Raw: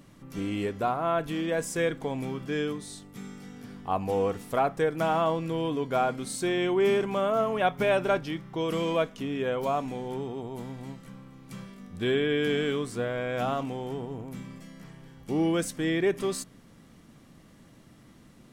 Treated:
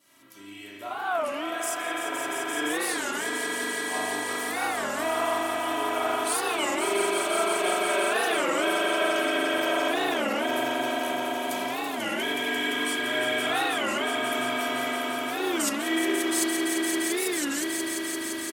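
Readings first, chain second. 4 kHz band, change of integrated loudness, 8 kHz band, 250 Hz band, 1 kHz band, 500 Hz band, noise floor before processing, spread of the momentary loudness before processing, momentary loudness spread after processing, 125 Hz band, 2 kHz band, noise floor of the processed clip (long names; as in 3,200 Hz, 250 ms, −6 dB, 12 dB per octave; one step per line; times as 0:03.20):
+9.5 dB, +2.0 dB, +12.5 dB, +1.0 dB, +3.5 dB, −0.5 dB, −55 dBFS, 18 LU, 5 LU, −16.0 dB, +9.5 dB, −35 dBFS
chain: fade in at the beginning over 5.87 s
high-shelf EQ 7,500 Hz +11.5 dB
reversed playback
downward compressor 6 to 1, threshold −38 dBFS, peak gain reduction 17.5 dB
reversed playback
high-pass filter 1,300 Hz 6 dB per octave
comb filter 3.1 ms, depth 83%
upward compression, threshold −53 dBFS
echo that builds up and dies away 172 ms, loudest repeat 5, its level −6 dB
spring reverb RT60 1.4 s, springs 40 ms, chirp 20 ms, DRR −4.5 dB
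wow of a warped record 33 1/3 rpm, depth 250 cents
level +9 dB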